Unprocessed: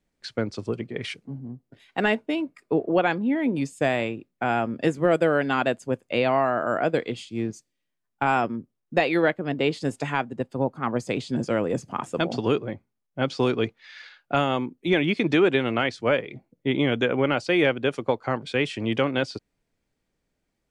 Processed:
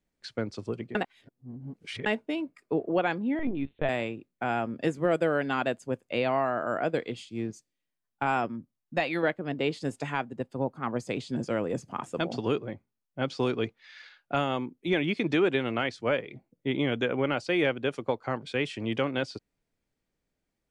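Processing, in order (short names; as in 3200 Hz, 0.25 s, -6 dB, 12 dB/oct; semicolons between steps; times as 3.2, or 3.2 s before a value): 0.95–2.06 reverse; 3.39–3.89 LPC vocoder at 8 kHz pitch kept; 8.49–9.23 bell 420 Hz -13.5 dB 0.34 oct; gain -5 dB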